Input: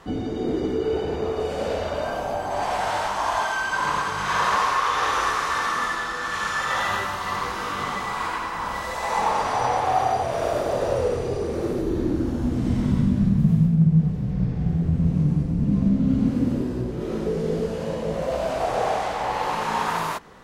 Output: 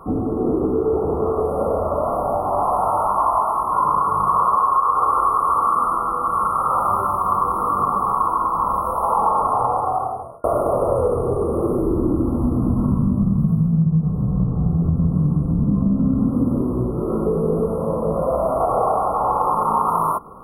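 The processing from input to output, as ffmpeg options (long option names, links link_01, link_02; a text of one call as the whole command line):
ffmpeg -i in.wav -filter_complex "[0:a]asplit=2[link_01][link_02];[link_01]atrim=end=10.44,asetpts=PTS-STARTPTS,afade=type=out:start_time=9.36:duration=1.08[link_03];[link_02]atrim=start=10.44,asetpts=PTS-STARTPTS,afade=type=in:duration=0.004:curve=hsin[link_04];[link_03][link_04]concat=n=2:v=0:a=1,equalizer=frequency=1100:width=7:gain=8.5,afftfilt=real='re*(1-between(b*sr/4096,1400,9100))':imag='im*(1-between(b*sr/4096,1400,9100))':win_size=4096:overlap=0.75,acompressor=threshold=-20dB:ratio=6,volume=6dB" out.wav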